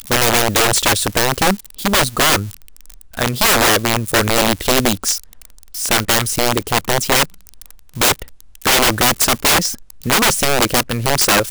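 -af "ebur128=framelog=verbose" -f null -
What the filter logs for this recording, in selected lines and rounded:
Integrated loudness:
  I:         -14.7 LUFS
  Threshold: -25.3 LUFS
Loudness range:
  LRA:         2.7 LU
  Threshold: -35.6 LUFS
  LRA low:   -17.1 LUFS
  LRA high:  -14.4 LUFS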